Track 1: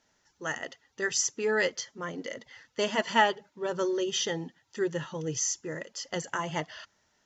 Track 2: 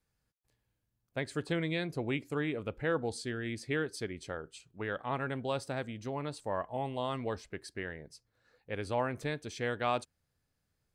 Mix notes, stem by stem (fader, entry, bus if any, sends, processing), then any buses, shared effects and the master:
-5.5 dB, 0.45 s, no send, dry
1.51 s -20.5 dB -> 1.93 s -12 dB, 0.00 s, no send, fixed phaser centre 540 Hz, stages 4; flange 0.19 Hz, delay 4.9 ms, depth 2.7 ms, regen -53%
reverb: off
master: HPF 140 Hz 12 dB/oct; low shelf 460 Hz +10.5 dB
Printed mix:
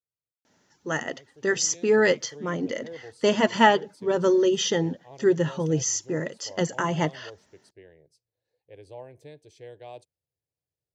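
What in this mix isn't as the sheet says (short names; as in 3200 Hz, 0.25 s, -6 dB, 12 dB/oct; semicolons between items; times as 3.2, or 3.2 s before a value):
stem 1 -5.5 dB -> +3.0 dB; stem 2: missing flange 0.19 Hz, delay 4.9 ms, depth 2.7 ms, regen -53%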